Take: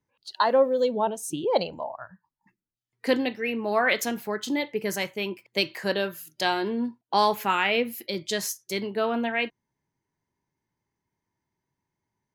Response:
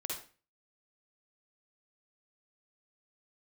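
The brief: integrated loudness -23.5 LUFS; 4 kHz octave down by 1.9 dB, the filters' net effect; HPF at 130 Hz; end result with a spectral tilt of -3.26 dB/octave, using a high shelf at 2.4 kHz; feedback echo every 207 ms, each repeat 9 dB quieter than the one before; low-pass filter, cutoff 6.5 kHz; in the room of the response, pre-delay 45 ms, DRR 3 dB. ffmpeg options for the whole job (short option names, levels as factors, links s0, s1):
-filter_complex "[0:a]highpass=130,lowpass=6500,highshelf=f=2400:g=6.5,equalizer=f=4000:t=o:g=-8,aecho=1:1:207|414|621|828:0.355|0.124|0.0435|0.0152,asplit=2[s0][s1];[1:a]atrim=start_sample=2205,adelay=45[s2];[s1][s2]afir=irnorm=-1:irlink=0,volume=0.631[s3];[s0][s3]amix=inputs=2:normalize=0,volume=1.06"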